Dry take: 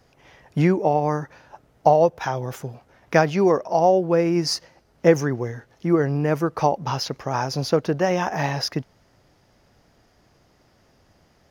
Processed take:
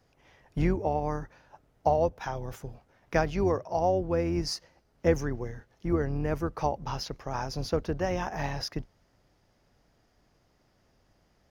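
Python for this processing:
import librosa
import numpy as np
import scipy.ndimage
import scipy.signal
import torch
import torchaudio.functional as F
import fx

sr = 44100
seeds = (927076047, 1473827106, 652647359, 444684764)

y = fx.octave_divider(x, sr, octaves=2, level_db=-2.0)
y = y * 10.0 ** (-9.0 / 20.0)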